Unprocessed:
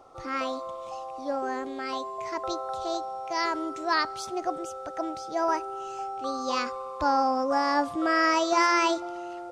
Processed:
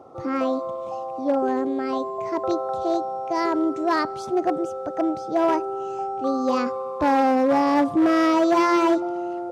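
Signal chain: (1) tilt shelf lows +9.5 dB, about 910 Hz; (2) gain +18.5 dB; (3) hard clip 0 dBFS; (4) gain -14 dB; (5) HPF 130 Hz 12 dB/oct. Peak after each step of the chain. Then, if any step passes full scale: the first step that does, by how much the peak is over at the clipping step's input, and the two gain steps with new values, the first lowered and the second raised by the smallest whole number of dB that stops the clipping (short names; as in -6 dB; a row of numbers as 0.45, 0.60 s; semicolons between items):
-10.0, +8.5, 0.0, -14.0, -10.0 dBFS; step 2, 8.5 dB; step 2 +9.5 dB, step 4 -5 dB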